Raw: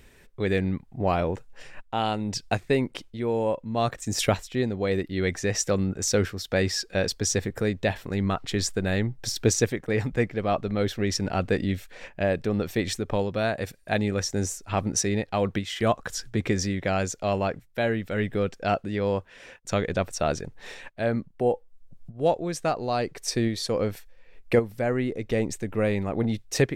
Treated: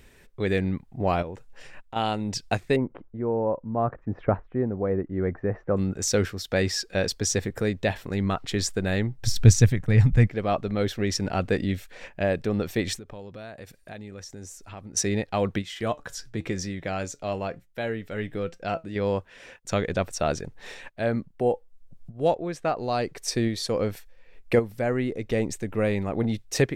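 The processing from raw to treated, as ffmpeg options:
ffmpeg -i in.wav -filter_complex "[0:a]asettb=1/sr,asplit=3[link_01][link_02][link_03];[link_01]atrim=end=1.224[link_04];[link_02]atrim=start=1.22:end=1.96,asetpts=PTS-STARTPTS,afade=type=in:duration=0.004:curve=qsin,afade=type=out:start_time=0.736:duration=0.004:curve=qsin,acompressor=threshold=-39dB:ratio=2:attack=3.2:release=140:knee=1:detection=peak[link_05];[link_03]atrim=start=1.956[link_06];[link_04][link_05]acrossfade=duration=0.004:curve1=hsin:curve2=qsin[link_07];[link_07][link_06]acrossfade=duration=0.004:curve1=qsin:curve2=hsin,asettb=1/sr,asplit=3[link_08][link_09][link_10];[link_08]atrim=end=2.764[link_11];[link_09]atrim=start=2.76:end=5.77,asetpts=PTS-STARTPTS,afade=type=in:duration=0.004:curve=qsin,afade=type=out:start_time=3.006:duration=0.004:curve=qsin,lowpass=frequency=1400:width=0.5412,lowpass=frequency=1400:width=1.3066[link_12];[link_10]atrim=start=5.766[link_13];[link_11][link_12]acrossfade=duration=0.004:curve1=hsin:curve2=qsin[link_14];[link_14][link_13]acrossfade=duration=0.004:curve1=qsin:curve2=hsin,asplit=3[link_15][link_16][link_17];[link_15]afade=type=out:start_time=9.23:duration=0.02[link_18];[link_16]asubboost=boost=8:cutoff=130,afade=type=in:start_time=9.23:duration=0.02,afade=type=out:start_time=10.26:duration=0.02[link_19];[link_17]afade=type=in:start_time=10.26:duration=0.02[link_20];[link_18][link_19][link_20]amix=inputs=3:normalize=0,asettb=1/sr,asplit=3[link_21][link_22][link_23];[link_21]atrim=end=12.974[link_24];[link_22]atrim=start=12.97:end=14.97,asetpts=PTS-STARTPTS,afade=type=in:duration=0.004:curve=qsin,afade=type=out:start_time=1.996:duration=0.004:curve=qsin,acompressor=threshold=-42dB:ratio=3:attack=3.2:release=140:knee=1:detection=peak[link_25];[link_23]atrim=start=14.966[link_26];[link_24][link_25]acrossfade=duration=0.004:curve1=hsin:curve2=qsin[link_27];[link_27][link_26]acrossfade=duration=0.004:curve1=qsin:curve2=hsin,asettb=1/sr,asplit=3[link_28][link_29][link_30];[link_28]atrim=end=15.624[link_31];[link_29]atrim=start=15.62:end=18.96,asetpts=PTS-STARTPTS,afade=type=in:duration=0.004:curve=qsin,afade=type=out:start_time=3.336:duration=0.004:curve=qsin,flanger=delay=5.5:depth=1.7:regen=78:speed=1:shape=triangular[link_32];[link_30]atrim=start=18.956[link_33];[link_31][link_32]acrossfade=duration=0.004:curve1=hsin:curve2=qsin[link_34];[link_34][link_33]acrossfade=duration=0.004:curve1=qsin:curve2=hsin,asettb=1/sr,asplit=3[link_35][link_36][link_37];[link_35]atrim=end=22.344[link_38];[link_36]atrim=start=22.34:end=22.78,asetpts=PTS-STARTPTS,afade=type=in:duration=0.004:curve=qsin,afade=type=out:start_time=0.436:duration=0.004:curve=qsin,bass=frequency=250:gain=-3,treble=frequency=4000:gain=-11[link_39];[link_37]atrim=start=22.776[link_40];[link_38][link_39]acrossfade=duration=0.004:curve1=hsin:curve2=qsin[link_41];[link_41][link_40]acrossfade=duration=0.004:curve1=qsin:curve2=hsin" out.wav

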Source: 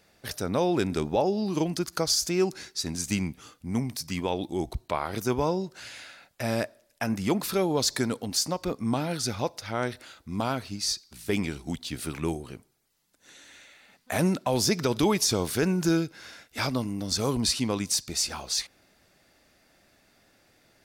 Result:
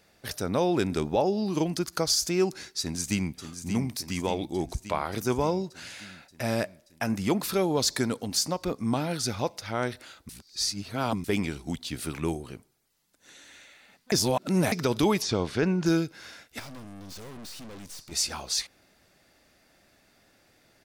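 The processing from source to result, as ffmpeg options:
ffmpeg -i in.wav -filter_complex "[0:a]asplit=2[link_01][link_02];[link_02]afade=type=in:start_time=2.8:duration=0.01,afade=type=out:start_time=3.37:duration=0.01,aecho=0:1:580|1160|1740|2320|2900|3480|4060|4640|5220|5800|6380:0.354813|0.248369|0.173859|0.121701|0.0851907|0.0596335|0.0417434|0.0292204|0.0204543|0.014318|0.0100226[link_03];[link_01][link_03]amix=inputs=2:normalize=0,asettb=1/sr,asplit=3[link_04][link_05][link_06];[link_04]atrim=end=15.224[link_07];[link_05]atrim=start=15.22:end=15.86,asetpts=PTS-STARTPTS,afade=type=in:duration=0.004:curve=qsin,afade=type=out:start_time=0.636:duration=0.004:curve=qsin,lowpass=4000[link_08];[link_06]atrim=start=15.856[link_09];[link_07][link_08]acrossfade=duration=0.004:curve1=hsin:curve2=qsin[link_10];[link_10][link_09]acrossfade=duration=0.004:curve1=qsin:curve2=hsin,asplit=3[link_11][link_12][link_13];[link_11]afade=type=out:start_time=16.58:duration=0.02[link_14];[link_12]aeval=exprs='(tanh(126*val(0)+0.75)-tanh(0.75))/126':channel_layout=same,afade=type=in:start_time=16.58:duration=0.02,afade=type=out:start_time=18.11:duration=0.02[link_15];[link_13]afade=type=in:start_time=18.11:duration=0.02[link_16];[link_14][link_15][link_16]amix=inputs=3:normalize=0,asplit=5[link_17][link_18][link_19][link_20][link_21];[link_17]atrim=end=10.292[link_22];[link_18]atrim=start=10.288:end=11.242,asetpts=PTS-STARTPTS,areverse[link_23];[link_19]atrim=start=11.238:end=14.122[link_24];[link_20]atrim=start=14.118:end=14.722,asetpts=PTS-STARTPTS,areverse[link_25];[link_21]atrim=start=14.718[link_26];[link_22][link_23]acrossfade=duration=0.004:curve1=hsin:curve2=hsin[link_27];[link_27][link_24]acrossfade=duration=0.004:curve1=hsin:curve2=hsin[link_28];[link_28][link_25]acrossfade=duration=0.004:curve1=hsin:curve2=hsin[link_29];[link_29][link_26]acrossfade=duration=0.004:curve1=hsin:curve2=hsin" out.wav

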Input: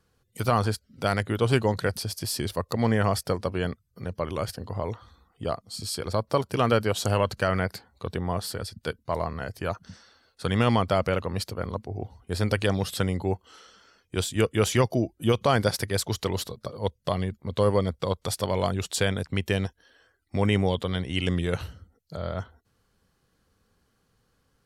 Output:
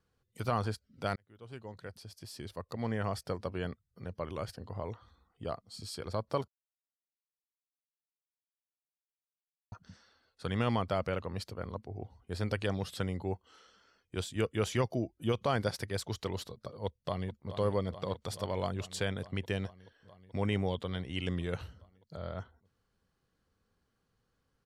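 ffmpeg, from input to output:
ffmpeg -i in.wav -filter_complex "[0:a]asplit=2[link_01][link_02];[link_02]afade=type=in:start_time=16.85:duration=0.01,afade=type=out:start_time=17.53:duration=0.01,aecho=0:1:430|860|1290|1720|2150|2580|3010|3440|3870|4300|4730|5160:0.281838|0.225471|0.180377|0.144301|0.115441|0.0923528|0.0738822|0.0591058|0.0472846|0.0378277|0.0302622|0.0242097[link_03];[link_01][link_03]amix=inputs=2:normalize=0,asplit=4[link_04][link_05][link_06][link_07];[link_04]atrim=end=1.16,asetpts=PTS-STARTPTS,afade=type=out:start_time=1.156:duration=0.004:curve=hsin[link_08];[link_05]atrim=start=1.16:end=6.48,asetpts=PTS-STARTPTS,afade=type=in:duration=2.4,afade=type=out:start_time=5.316:duration=0.004:curve=hsin[link_09];[link_06]atrim=start=6.48:end=9.72,asetpts=PTS-STARTPTS,volume=0[link_10];[link_07]atrim=start=9.72,asetpts=PTS-STARTPTS,afade=type=in:duration=0.004:curve=hsin[link_11];[link_08][link_09][link_10][link_11]concat=n=4:v=0:a=1,highshelf=frequency=8600:gain=-9.5,volume=-8.5dB" out.wav

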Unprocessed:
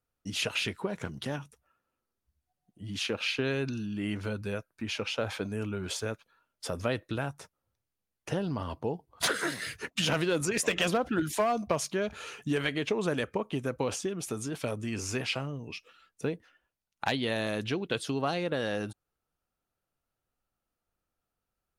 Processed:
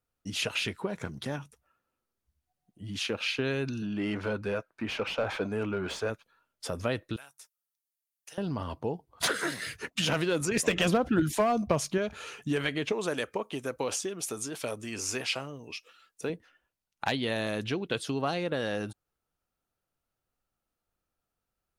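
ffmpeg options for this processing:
ffmpeg -i in.wav -filter_complex "[0:a]asettb=1/sr,asplit=3[link_01][link_02][link_03];[link_01]atrim=end=0.984[link_04];[link_02]atrim=start=0.98:end=1.39,asetpts=PTS-STARTPTS,afade=type=in:duration=0.004:curve=qsin,afade=type=out:start_time=0.406:duration=0.004:curve=qsin,bandreject=frequency=2900:width=9.7[link_05];[link_03]atrim=start=1.386[link_06];[link_04][link_05]acrossfade=duration=0.004:curve1=hsin:curve2=qsin[link_07];[link_07][link_06]acrossfade=duration=0.004:curve1=qsin:curve2=hsin,asettb=1/sr,asplit=3[link_08][link_09][link_10];[link_08]atrim=end=3.824[link_11];[link_09]atrim=start=3.82:end=6.1,asetpts=PTS-STARTPTS,afade=type=in:duration=0.004:curve=qsin,afade=type=out:start_time=2.276:duration=0.004:curve=qsin,asplit=2[link_12][link_13];[link_13]highpass=frequency=720:poles=1,volume=18dB,asoftclip=type=tanh:threshold=-18.5dB[link_14];[link_12][link_14]amix=inputs=2:normalize=0,lowpass=frequency=1100:poles=1,volume=-6dB[link_15];[link_10]atrim=start=6.096[link_16];[link_11][link_15]acrossfade=duration=0.004:curve1=hsin:curve2=qsin[link_17];[link_17][link_16]acrossfade=duration=0.004:curve1=qsin:curve2=hsin,asettb=1/sr,asplit=3[link_18][link_19][link_20];[link_18]atrim=end=7.164[link_21];[link_19]atrim=start=7.16:end=8.38,asetpts=PTS-STARTPTS,afade=type=in:duration=0.004:curve=qsin,afade=type=out:start_time=1.216:duration=0.004:curve=qsin,aderivative[link_22];[link_20]atrim=start=8.376[link_23];[link_21][link_22]acrossfade=duration=0.004:curve1=hsin:curve2=qsin[link_24];[link_24][link_23]acrossfade=duration=0.004:curve1=qsin:curve2=hsin,asettb=1/sr,asplit=3[link_25][link_26][link_27];[link_25]atrim=end=10.514[link_28];[link_26]atrim=start=10.51:end=11.98,asetpts=PTS-STARTPTS,afade=type=in:duration=0.004:curve=qsin,afade=type=out:start_time=1.466:duration=0.004:curve=qsin,lowshelf=frequency=300:gain=7.5[link_29];[link_27]atrim=start=11.976[link_30];[link_28][link_29]acrossfade=duration=0.004:curve1=hsin:curve2=qsin[link_31];[link_31][link_30]acrossfade=duration=0.004:curve1=qsin:curve2=hsin,asettb=1/sr,asplit=3[link_32][link_33][link_34];[link_32]atrim=end=12.924[link_35];[link_33]atrim=start=12.92:end=16.3,asetpts=PTS-STARTPTS,afade=type=in:duration=0.004:curve=qsin,afade=type=out:start_time=3.376:duration=0.004:curve=qsin,bass=frequency=250:gain=-9,treble=frequency=4000:gain=5[link_36];[link_34]atrim=start=16.296[link_37];[link_35][link_36]acrossfade=duration=0.004:curve1=hsin:curve2=qsin[link_38];[link_38][link_37]acrossfade=duration=0.004:curve1=qsin:curve2=hsin" out.wav

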